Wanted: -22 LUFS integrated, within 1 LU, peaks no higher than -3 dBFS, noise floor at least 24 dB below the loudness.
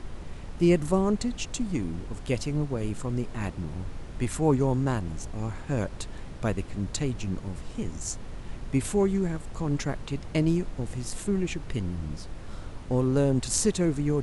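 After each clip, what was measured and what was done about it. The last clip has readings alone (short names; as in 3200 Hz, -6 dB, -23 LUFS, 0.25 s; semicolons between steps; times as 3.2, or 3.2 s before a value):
noise floor -40 dBFS; noise floor target -53 dBFS; loudness -29.0 LUFS; peak -8.5 dBFS; loudness target -22.0 LUFS
-> noise print and reduce 13 dB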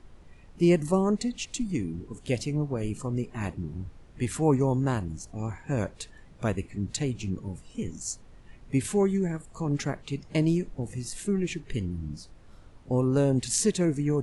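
noise floor -52 dBFS; noise floor target -53 dBFS
-> noise print and reduce 6 dB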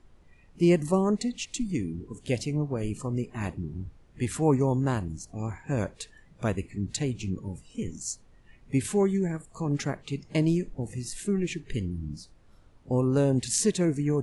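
noise floor -57 dBFS; loudness -29.0 LUFS; peak -8.0 dBFS; loudness target -22.0 LUFS
-> gain +7 dB; limiter -3 dBFS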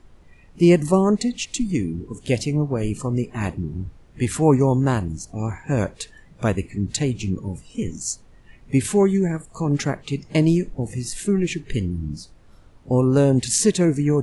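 loudness -22.0 LUFS; peak -3.0 dBFS; noise floor -50 dBFS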